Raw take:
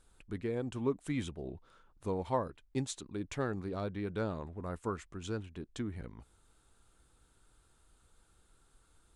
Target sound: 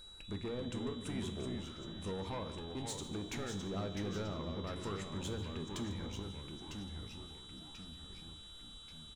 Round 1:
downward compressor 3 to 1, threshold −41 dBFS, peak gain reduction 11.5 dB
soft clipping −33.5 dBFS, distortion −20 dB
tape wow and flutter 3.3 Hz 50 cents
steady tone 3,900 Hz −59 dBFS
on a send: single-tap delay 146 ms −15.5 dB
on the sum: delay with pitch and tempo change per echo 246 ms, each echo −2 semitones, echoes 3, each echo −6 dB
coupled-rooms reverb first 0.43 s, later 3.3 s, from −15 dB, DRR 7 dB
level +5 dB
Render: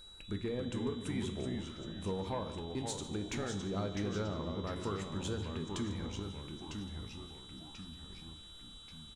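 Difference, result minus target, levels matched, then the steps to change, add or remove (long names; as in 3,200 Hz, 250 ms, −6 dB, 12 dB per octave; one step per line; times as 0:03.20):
soft clipping: distortion −10 dB
change: soft clipping −42 dBFS, distortion −10 dB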